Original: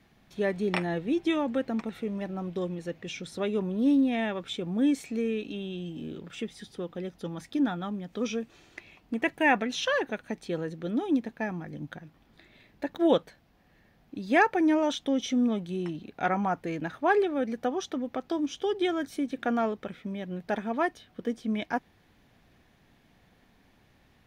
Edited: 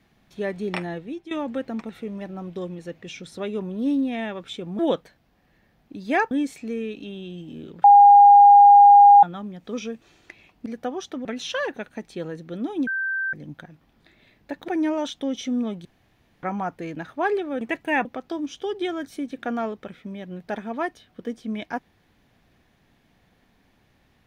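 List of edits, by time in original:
0:00.85–0:01.31: fade out, to −16 dB
0:06.32–0:07.71: beep over 812 Hz −7 dBFS
0:09.14–0:09.58: swap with 0:17.46–0:18.05
0:11.20–0:11.66: beep over 1,560 Hz −23 dBFS
0:13.01–0:14.53: move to 0:04.79
0:15.70–0:16.28: fill with room tone

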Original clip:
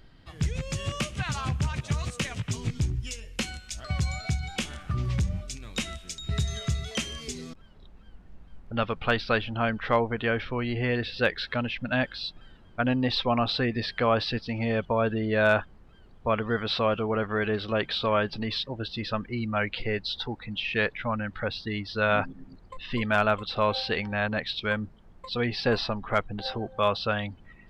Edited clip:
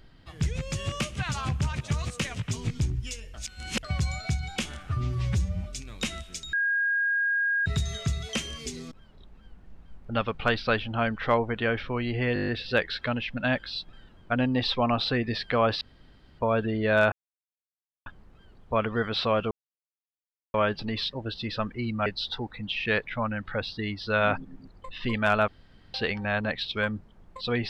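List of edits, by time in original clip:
0:03.34–0:03.83: reverse
0:04.89–0:05.39: time-stretch 1.5×
0:06.28: insert tone 1,630 Hz −22.5 dBFS 1.13 s
0:10.96: stutter 0.02 s, 8 plays
0:14.29–0:14.87: fill with room tone
0:15.60: splice in silence 0.94 s
0:17.05–0:18.08: silence
0:19.60–0:19.94: remove
0:23.36–0:23.82: fill with room tone

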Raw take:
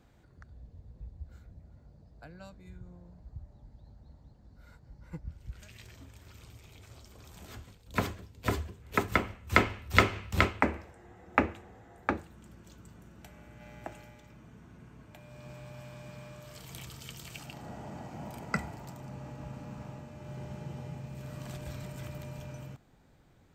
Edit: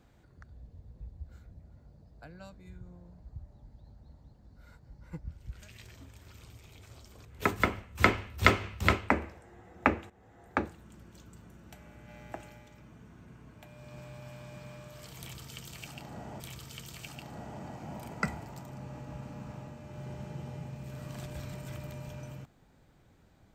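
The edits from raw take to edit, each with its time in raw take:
0:07.25–0:08.77: remove
0:11.62–0:12.17: fade in equal-power, from −13.5 dB
0:16.71–0:17.92: repeat, 2 plays

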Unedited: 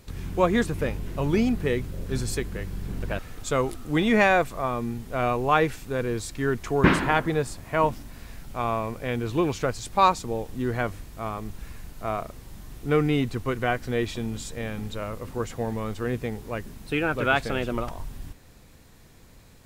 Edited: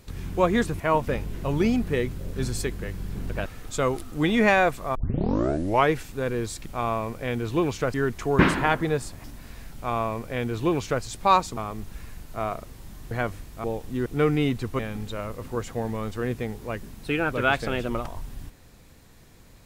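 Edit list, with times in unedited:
0:04.68: tape start 0.97 s
0:07.69–0:07.96: move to 0:00.80
0:08.47–0:09.75: duplicate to 0:06.39
0:10.29–0:10.71: swap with 0:11.24–0:12.78
0:13.51–0:14.62: remove

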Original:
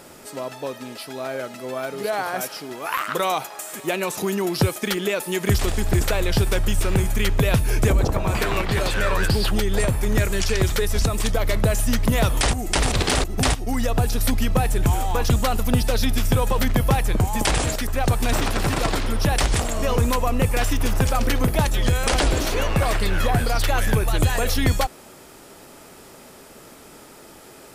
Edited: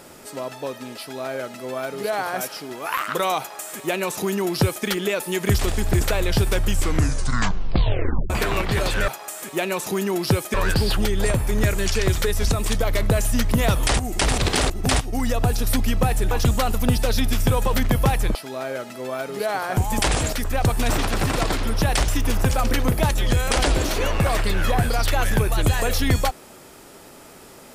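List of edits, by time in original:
0:00.99–0:02.41: duplicate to 0:17.20
0:03.39–0:04.85: duplicate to 0:09.08
0:06.67: tape stop 1.63 s
0:14.85–0:15.16: remove
0:19.51–0:20.64: remove

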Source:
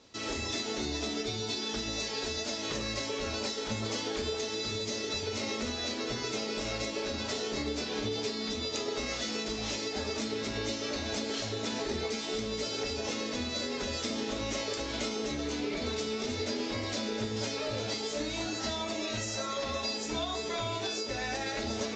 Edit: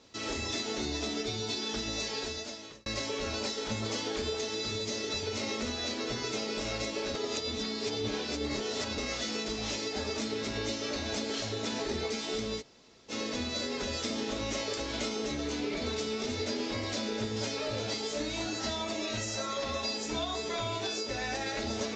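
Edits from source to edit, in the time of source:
0:02.13–0:02.86: fade out
0:07.15–0:08.98: reverse
0:12.60–0:13.11: fill with room tone, crossfade 0.06 s

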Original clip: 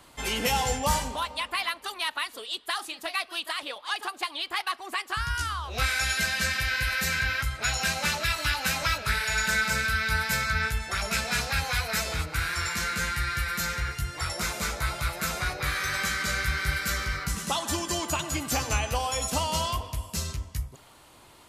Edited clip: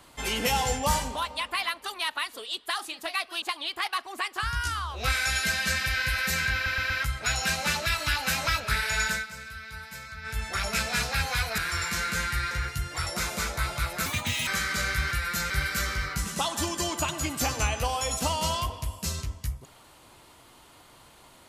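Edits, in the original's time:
0:03.42–0:04.16: remove
0:07.28: stutter 0.12 s, 4 plays
0:09.44–0:10.81: duck −14.5 dB, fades 0.20 s
0:11.96–0:12.42: remove
0:13.35–0:13.74: move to 0:16.61
0:15.29–0:15.97: play speed 165%

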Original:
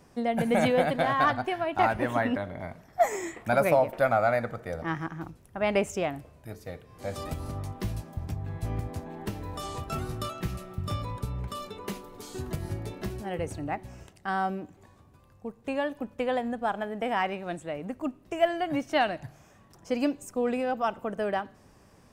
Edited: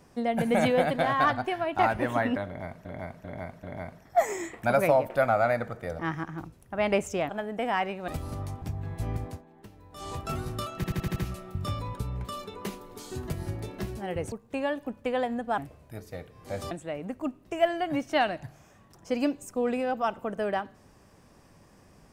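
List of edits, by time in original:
0:02.46–0:02.85: repeat, 4 plays
0:06.12–0:07.25: swap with 0:16.72–0:17.51
0:07.79–0:08.25: remove
0:08.89–0:09.73: duck −15 dB, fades 0.18 s
0:10.39: stutter 0.08 s, 6 plays
0:13.55–0:15.46: remove

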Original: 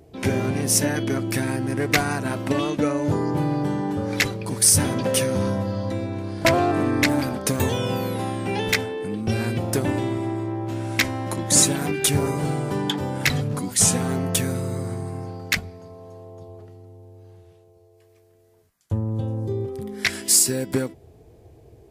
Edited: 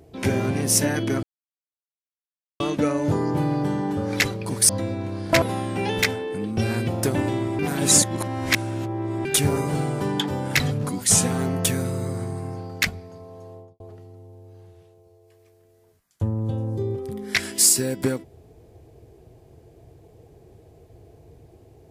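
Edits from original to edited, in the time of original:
0:01.23–0:02.60: silence
0:04.69–0:05.81: remove
0:06.54–0:08.12: remove
0:10.29–0:11.95: reverse
0:16.24–0:16.50: fade out and dull

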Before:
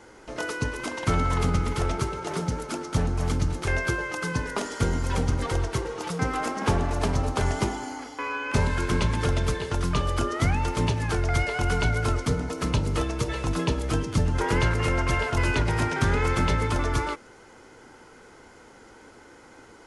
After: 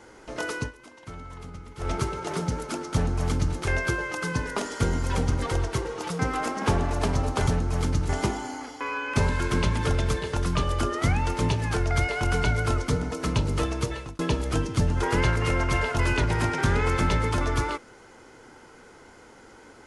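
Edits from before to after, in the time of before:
0:00.58–0:01.92: duck −17 dB, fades 0.15 s
0:02.94–0:03.56: duplicate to 0:07.47
0:13.21–0:13.57: fade out

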